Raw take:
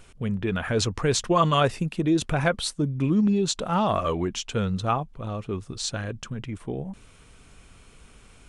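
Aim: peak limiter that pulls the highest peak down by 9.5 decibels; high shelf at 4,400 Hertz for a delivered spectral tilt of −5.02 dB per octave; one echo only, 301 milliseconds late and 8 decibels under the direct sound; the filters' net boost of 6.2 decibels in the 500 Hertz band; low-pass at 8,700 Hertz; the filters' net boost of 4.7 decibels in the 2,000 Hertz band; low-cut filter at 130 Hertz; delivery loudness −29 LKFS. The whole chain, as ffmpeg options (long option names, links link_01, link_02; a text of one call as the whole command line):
ffmpeg -i in.wav -af "highpass=130,lowpass=8700,equalizer=frequency=500:width_type=o:gain=7.5,equalizer=frequency=2000:width_type=o:gain=7.5,highshelf=frequency=4400:gain=-7.5,alimiter=limit=-12dB:level=0:latency=1,aecho=1:1:301:0.398,volume=-4.5dB" out.wav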